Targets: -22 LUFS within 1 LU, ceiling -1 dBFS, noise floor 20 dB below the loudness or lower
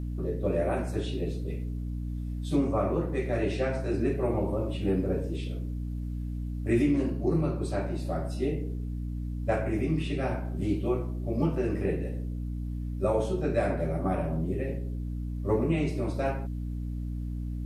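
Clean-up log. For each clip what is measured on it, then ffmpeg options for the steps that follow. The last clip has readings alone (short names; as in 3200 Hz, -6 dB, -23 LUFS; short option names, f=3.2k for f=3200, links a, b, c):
hum 60 Hz; harmonics up to 300 Hz; hum level -31 dBFS; loudness -30.5 LUFS; peak -14.0 dBFS; loudness target -22.0 LUFS
-> -af "bandreject=f=60:t=h:w=4,bandreject=f=120:t=h:w=4,bandreject=f=180:t=h:w=4,bandreject=f=240:t=h:w=4,bandreject=f=300:t=h:w=4"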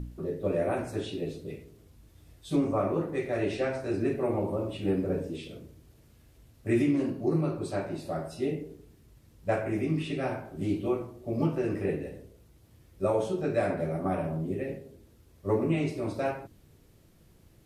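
hum none; loudness -31.0 LUFS; peak -15.0 dBFS; loudness target -22.0 LUFS
-> -af "volume=9dB"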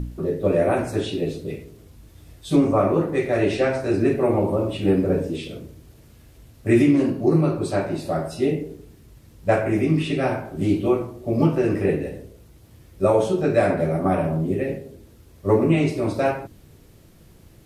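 loudness -22.0 LUFS; peak -6.0 dBFS; noise floor -50 dBFS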